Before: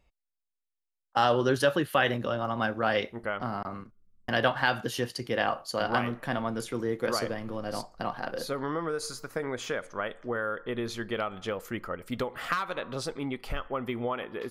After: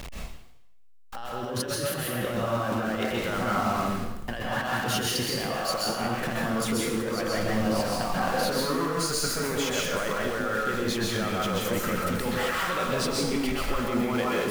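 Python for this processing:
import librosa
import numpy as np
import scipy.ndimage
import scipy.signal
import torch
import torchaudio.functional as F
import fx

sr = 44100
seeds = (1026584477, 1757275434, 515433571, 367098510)

y = x + 0.5 * 10.0 ** (-35.5 / 20.0) * np.sign(x)
y = fx.over_compress(y, sr, threshold_db=-32.0, ratio=-1.0)
y = fx.rev_plate(y, sr, seeds[0], rt60_s=0.81, hf_ratio=1.0, predelay_ms=115, drr_db=-3.0)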